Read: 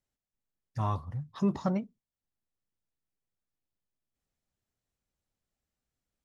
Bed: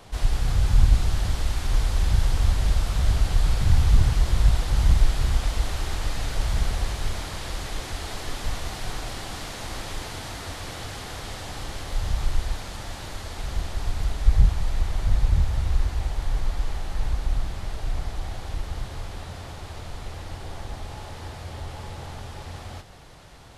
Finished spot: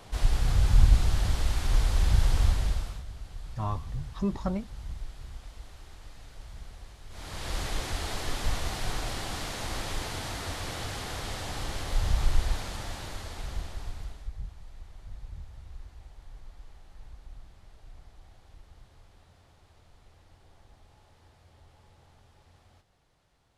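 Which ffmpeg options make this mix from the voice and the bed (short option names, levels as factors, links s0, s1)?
-filter_complex "[0:a]adelay=2800,volume=0.841[s0];[1:a]volume=7.94,afade=t=out:st=2.41:d=0.63:silence=0.11885,afade=t=in:st=7.09:d=0.49:silence=0.1,afade=t=out:st=12.58:d=1.74:silence=0.0841395[s1];[s0][s1]amix=inputs=2:normalize=0"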